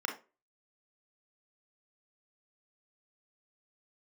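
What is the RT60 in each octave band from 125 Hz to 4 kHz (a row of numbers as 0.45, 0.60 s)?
0.30, 0.30, 0.35, 0.30, 0.25, 0.20 s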